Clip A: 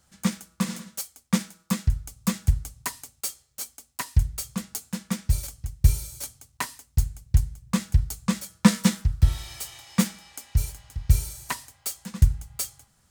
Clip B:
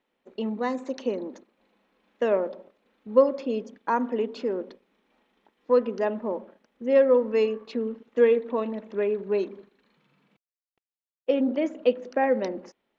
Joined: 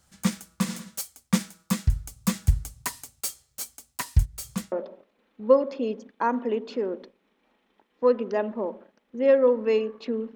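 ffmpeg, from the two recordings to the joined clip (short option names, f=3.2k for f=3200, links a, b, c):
-filter_complex "[0:a]asplit=3[a][b][c];[a]afade=t=out:st=4.24:d=0.02[d];[b]aeval=exprs='val(0)*pow(10,-28*(0.5-0.5*cos(2*PI*0.88*n/s))/20)':c=same,afade=t=in:st=4.24:d=0.02,afade=t=out:st=4.72:d=0.02[e];[c]afade=t=in:st=4.72:d=0.02[f];[d][e][f]amix=inputs=3:normalize=0,apad=whole_dur=10.35,atrim=end=10.35,atrim=end=4.722[g];[1:a]atrim=start=2.388:end=8.02[h];[g][h]acrossfade=d=0.004:c1=hsin:c2=hsin"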